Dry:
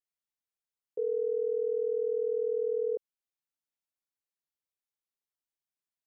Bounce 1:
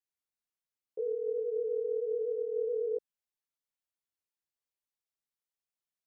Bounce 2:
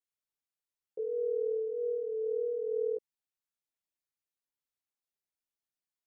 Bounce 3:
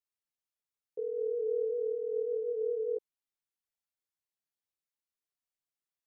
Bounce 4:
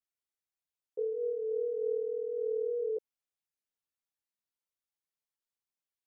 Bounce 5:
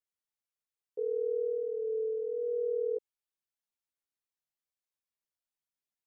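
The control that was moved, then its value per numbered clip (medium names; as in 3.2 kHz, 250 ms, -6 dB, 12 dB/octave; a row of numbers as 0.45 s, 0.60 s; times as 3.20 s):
chorus, rate: 2.7 Hz, 0.53 Hz, 1.6 Hz, 0.79 Hz, 0.25 Hz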